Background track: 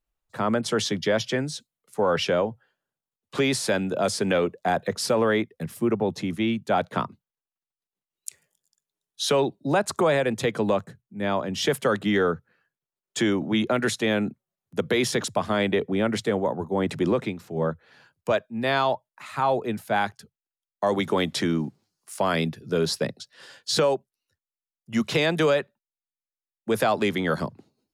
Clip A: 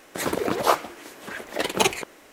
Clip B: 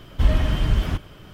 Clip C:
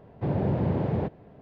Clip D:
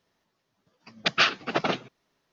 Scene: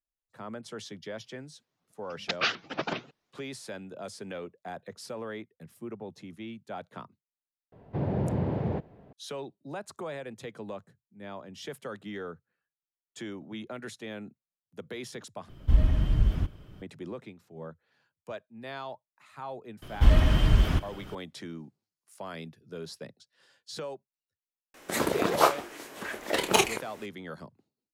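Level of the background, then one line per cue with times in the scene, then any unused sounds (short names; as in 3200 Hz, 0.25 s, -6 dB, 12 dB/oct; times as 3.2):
background track -16.5 dB
1.23 add D -6.5 dB + shaped vibrato saw up 5.3 Hz, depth 250 cents
7.72 add C -3 dB
15.49 replace with B -13.5 dB + low shelf 390 Hz +10.5 dB
19.82 add B -1 dB
24.74 add A -2 dB + doubler 28 ms -9 dB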